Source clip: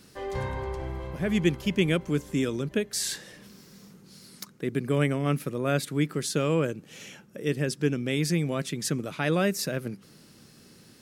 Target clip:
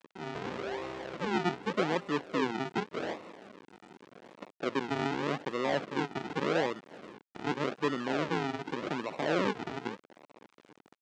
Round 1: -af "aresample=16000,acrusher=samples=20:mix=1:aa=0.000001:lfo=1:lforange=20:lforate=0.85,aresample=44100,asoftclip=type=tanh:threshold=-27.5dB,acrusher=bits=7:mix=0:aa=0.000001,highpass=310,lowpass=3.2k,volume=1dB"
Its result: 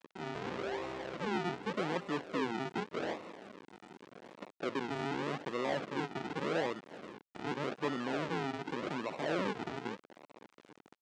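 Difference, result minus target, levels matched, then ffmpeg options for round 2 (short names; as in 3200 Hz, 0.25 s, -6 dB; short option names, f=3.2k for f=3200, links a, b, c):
soft clip: distortion +7 dB
-af "aresample=16000,acrusher=samples=20:mix=1:aa=0.000001:lfo=1:lforange=20:lforate=0.85,aresample=44100,asoftclip=type=tanh:threshold=-19.5dB,acrusher=bits=7:mix=0:aa=0.000001,highpass=310,lowpass=3.2k,volume=1dB"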